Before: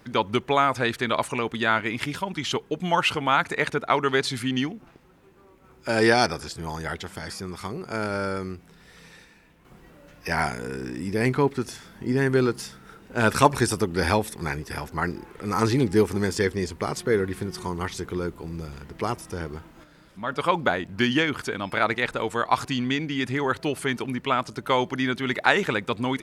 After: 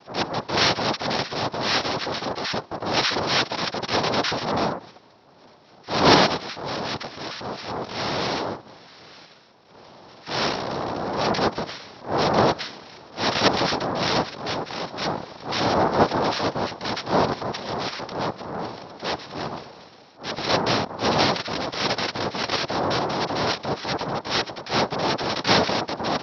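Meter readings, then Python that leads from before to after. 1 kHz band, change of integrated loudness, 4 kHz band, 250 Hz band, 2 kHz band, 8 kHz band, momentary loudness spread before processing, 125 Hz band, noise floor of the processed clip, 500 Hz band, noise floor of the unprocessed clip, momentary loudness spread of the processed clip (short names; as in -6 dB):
+2.5 dB, +1.5 dB, +7.0 dB, -1.5 dB, -1.0 dB, -0.5 dB, 13 LU, -2.0 dB, -51 dBFS, +0.5 dB, -54 dBFS, 12 LU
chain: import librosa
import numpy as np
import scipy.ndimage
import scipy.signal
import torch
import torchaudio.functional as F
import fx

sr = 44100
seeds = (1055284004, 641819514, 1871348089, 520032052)

p1 = fx.noise_vocoder(x, sr, seeds[0], bands=2)
p2 = fx.level_steps(p1, sr, step_db=18)
p3 = p1 + F.gain(torch.from_numpy(p2), -2.0).numpy()
p4 = fx.transient(p3, sr, attack_db=-11, sustain_db=3)
p5 = scipy.signal.sosfilt(scipy.signal.cheby1(6, 3, 5600.0, 'lowpass', fs=sr, output='sos'), p4)
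y = F.gain(torch.from_numpy(p5), 3.5).numpy()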